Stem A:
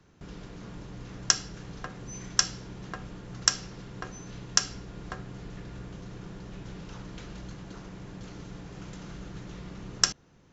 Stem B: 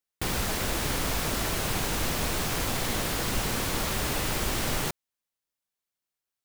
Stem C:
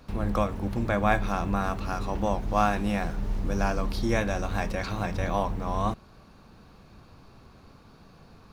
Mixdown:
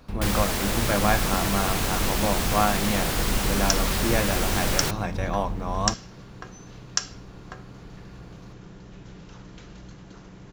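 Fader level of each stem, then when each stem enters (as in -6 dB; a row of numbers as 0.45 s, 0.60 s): -2.0 dB, +2.5 dB, +1.0 dB; 2.40 s, 0.00 s, 0.00 s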